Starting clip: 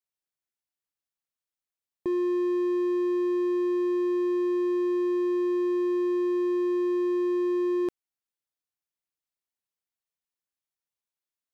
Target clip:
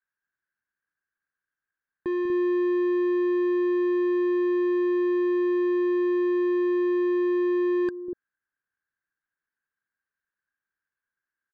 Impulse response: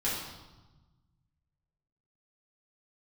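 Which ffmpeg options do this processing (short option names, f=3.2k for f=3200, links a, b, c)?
-filter_complex "[0:a]lowpass=f=1.6k:t=q:w=16,equalizer=f=660:w=4.5:g=-9,acrossover=split=500[a][b];[a]aecho=1:1:195.3|242:0.447|0.708[c];[b]asoftclip=type=tanh:threshold=-33dB[d];[c][d]amix=inputs=2:normalize=0"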